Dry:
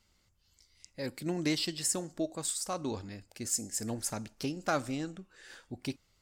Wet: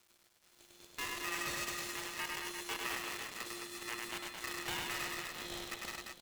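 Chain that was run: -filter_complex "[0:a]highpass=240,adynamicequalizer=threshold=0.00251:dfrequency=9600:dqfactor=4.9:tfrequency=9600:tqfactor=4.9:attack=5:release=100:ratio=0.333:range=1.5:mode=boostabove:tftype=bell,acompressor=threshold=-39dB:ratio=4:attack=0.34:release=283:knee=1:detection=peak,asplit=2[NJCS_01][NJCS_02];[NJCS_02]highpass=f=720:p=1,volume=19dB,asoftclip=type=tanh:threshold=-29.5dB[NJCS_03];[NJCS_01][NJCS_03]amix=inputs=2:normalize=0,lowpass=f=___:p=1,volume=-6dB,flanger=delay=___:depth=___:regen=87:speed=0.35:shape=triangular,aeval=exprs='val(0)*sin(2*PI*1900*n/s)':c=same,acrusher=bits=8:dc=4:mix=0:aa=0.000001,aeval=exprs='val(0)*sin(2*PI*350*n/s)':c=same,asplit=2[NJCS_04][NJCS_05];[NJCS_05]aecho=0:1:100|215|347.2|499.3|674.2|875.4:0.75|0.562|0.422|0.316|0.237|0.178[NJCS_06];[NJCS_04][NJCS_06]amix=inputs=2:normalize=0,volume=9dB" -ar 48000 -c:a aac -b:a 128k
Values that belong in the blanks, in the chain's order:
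2700, 7.4, 7.3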